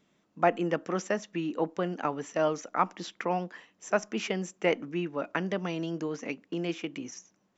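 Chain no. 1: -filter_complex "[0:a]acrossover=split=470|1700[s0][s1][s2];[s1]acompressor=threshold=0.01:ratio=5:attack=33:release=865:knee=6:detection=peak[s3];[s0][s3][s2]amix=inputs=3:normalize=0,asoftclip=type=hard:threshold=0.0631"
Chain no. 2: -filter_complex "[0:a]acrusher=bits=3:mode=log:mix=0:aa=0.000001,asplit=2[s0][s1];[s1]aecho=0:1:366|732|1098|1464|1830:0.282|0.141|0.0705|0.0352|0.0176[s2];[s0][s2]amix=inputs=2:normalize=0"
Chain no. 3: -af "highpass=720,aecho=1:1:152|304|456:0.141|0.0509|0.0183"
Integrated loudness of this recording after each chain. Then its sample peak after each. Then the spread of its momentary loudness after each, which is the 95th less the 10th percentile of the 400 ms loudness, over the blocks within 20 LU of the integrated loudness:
-35.0 LUFS, -31.0 LUFS, -36.0 LUFS; -24.0 dBFS, -10.0 dBFS, -13.0 dBFS; 5 LU, 8 LU, 11 LU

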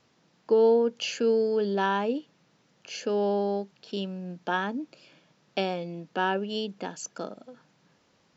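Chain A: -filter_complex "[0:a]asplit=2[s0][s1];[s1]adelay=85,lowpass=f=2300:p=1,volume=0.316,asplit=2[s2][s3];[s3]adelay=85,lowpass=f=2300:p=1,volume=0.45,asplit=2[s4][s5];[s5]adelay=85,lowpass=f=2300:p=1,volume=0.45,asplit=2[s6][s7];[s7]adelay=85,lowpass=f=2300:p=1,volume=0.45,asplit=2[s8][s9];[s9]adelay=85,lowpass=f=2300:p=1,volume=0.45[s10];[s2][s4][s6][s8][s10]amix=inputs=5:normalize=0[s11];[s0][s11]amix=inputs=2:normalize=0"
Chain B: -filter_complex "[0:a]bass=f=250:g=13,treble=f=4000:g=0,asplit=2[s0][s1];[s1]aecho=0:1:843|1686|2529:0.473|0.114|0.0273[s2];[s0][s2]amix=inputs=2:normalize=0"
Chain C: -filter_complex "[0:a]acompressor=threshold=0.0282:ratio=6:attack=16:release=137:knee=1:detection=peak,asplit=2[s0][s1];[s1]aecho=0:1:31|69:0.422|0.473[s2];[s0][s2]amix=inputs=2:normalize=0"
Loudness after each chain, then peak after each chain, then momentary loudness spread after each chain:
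-27.5 LUFS, -25.0 LUFS, -33.5 LUFS; -11.0 dBFS, -10.0 dBFS, -14.5 dBFS; 15 LU, 14 LU, 12 LU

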